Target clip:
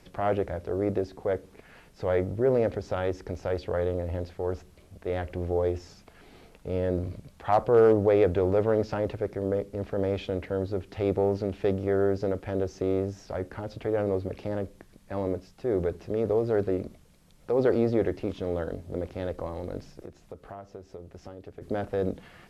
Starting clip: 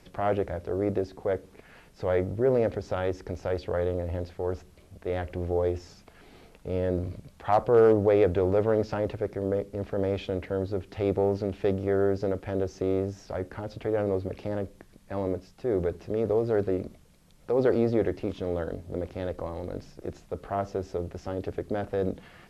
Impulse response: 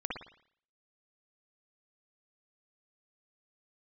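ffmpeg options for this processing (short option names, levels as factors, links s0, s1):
-filter_complex "[0:a]asplit=3[s0][s1][s2];[s0]afade=t=out:st=20.03:d=0.02[s3];[s1]acompressor=threshold=0.01:ratio=6,afade=t=in:st=20.03:d=0.02,afade=t=out:st=21.61:d=0.02[s4];[s2]afade=t=in:st=21.61:d=0.02[s5];[s3][s4][s5]amix=inputs=3:normalize=0"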